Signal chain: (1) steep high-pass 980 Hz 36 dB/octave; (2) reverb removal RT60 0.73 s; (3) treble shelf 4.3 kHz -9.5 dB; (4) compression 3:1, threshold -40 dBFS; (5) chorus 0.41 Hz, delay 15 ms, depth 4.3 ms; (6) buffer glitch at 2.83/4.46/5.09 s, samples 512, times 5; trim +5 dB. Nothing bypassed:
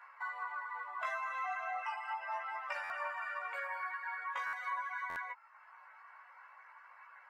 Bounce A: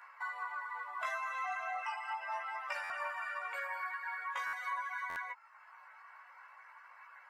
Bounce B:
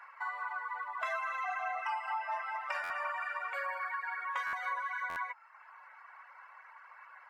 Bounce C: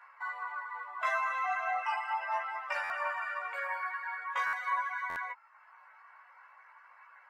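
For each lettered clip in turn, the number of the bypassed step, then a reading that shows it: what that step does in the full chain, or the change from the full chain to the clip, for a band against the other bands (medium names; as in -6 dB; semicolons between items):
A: 3, 4 kHz band +3.0 dB; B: 5, loudness change +3.0 LU; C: 4, momentary loudness spread change -11 LU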